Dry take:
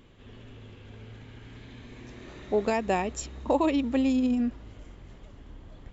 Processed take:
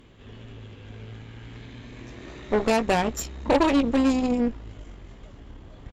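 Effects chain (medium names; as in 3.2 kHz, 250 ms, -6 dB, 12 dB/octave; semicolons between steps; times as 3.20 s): doubling 18 ms -9 dB; Chebyshev shaper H 8 -17 dB, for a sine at -12 dBFS; trim +3 dB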